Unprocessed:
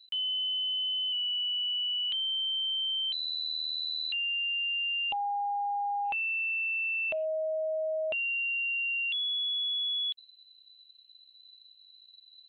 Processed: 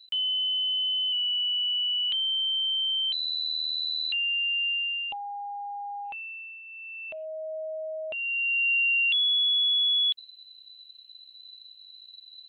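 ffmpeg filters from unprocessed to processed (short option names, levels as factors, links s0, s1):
-af "volume=18.8,afade=t=out:st=4.68:d=0.51:silence=0.375837,afade=t=out:st=5.99:d=0.64:silence=0.334965,afade=t=in:st=6.63:d=0.94:silence=0.281838,afade=t=in:st=8.11:d=0.61:silence=0.298538"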